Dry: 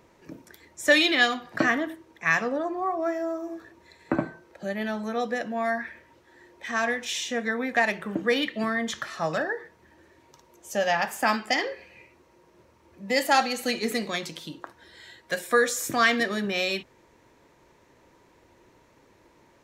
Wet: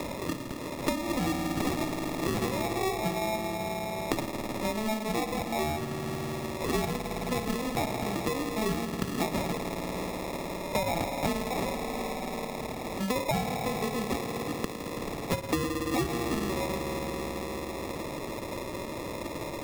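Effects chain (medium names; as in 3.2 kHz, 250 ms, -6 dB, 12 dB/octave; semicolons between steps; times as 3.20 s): spring tank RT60 3 s, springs 53 ms, chirp 25 ms, DRR 5 dB; peak limiter -15.5 dBFS, peak gain reduction 8.5 dB; resonant low-pass 1.3 kHz, resonance Q 4.2; sample-and-hold 29×; three bands compressed up and down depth 100%; trim -6.5 dB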